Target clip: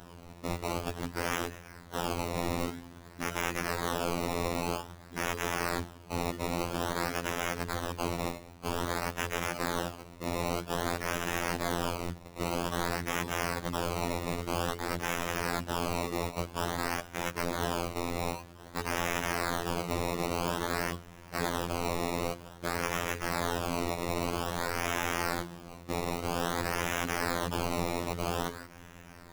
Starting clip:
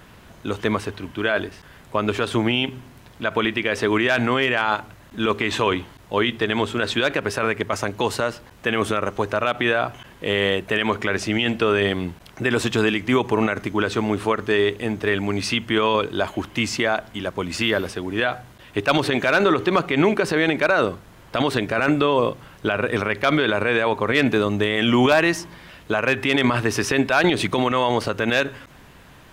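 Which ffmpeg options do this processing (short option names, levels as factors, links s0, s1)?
-af "acrusher=samples=19:mix=1:aa=0.000001:lfo=1:lforange=19:lforate=0.51,aeval=exprs='(mod(15*val(0)+1,2)-1)/15':c=same,afftfilt=real='hypot(re,im)*cos(PI*b)':imag='0':win_size=2048:overlap=0.75"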